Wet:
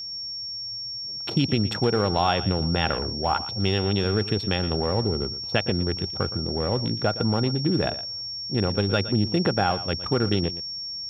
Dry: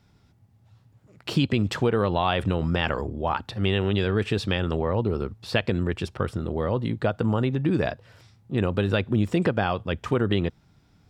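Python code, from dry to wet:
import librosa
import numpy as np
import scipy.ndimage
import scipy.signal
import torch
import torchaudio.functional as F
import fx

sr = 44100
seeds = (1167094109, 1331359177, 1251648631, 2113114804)

p1 = fx.wiener(x, sr, points=25)
p2 = fx.small_body(p1, sr, hz=(790.0, 1400.0, 3600.0), ring_ms=45, db=8)
p3 = p2 + 10.0 ** (-32.0 / 20.0) * np.sin(2.0 * np.pi * 5500.0 * np.arange(len(p2)) / sr)
y = p3 + fx.echo_single(p3, sr, ms=116, db=-15.0, dry=0)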